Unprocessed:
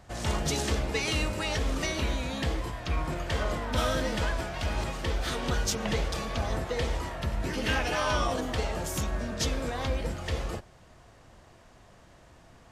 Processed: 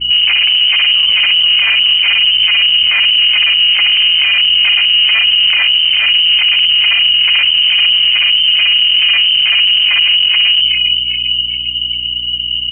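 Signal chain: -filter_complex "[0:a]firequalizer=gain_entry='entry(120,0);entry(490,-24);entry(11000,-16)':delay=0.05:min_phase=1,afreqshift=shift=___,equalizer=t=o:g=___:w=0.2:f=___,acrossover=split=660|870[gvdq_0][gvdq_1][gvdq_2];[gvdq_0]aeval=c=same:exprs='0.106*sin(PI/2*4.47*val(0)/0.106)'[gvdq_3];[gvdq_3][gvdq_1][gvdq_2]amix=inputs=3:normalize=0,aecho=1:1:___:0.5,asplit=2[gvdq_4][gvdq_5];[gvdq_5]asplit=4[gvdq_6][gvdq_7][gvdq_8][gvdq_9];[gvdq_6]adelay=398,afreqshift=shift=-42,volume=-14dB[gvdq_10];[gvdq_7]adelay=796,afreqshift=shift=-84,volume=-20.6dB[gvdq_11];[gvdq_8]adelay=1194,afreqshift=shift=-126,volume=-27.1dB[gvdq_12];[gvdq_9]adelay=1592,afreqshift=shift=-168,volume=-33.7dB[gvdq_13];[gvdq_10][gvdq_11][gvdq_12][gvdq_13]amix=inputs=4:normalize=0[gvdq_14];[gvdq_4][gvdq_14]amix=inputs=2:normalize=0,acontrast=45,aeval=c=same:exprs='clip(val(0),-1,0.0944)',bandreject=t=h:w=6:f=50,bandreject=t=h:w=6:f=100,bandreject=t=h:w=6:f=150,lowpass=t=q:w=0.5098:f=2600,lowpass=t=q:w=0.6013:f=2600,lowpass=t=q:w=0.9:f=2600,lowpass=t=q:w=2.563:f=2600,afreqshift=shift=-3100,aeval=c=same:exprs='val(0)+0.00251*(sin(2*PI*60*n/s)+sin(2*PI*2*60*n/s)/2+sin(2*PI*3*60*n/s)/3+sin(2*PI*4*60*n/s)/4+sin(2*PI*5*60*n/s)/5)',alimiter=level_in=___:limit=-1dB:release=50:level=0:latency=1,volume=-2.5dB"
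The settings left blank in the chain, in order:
-270, 4, 84, 1.1, 18.5dB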